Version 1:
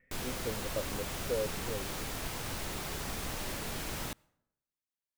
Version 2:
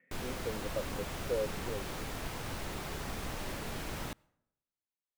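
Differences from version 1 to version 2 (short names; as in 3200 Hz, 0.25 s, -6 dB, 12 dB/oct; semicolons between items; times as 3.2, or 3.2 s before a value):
speech: add steep high-pass 150 Hz; background: add high shelf 3600 Hz -7 dB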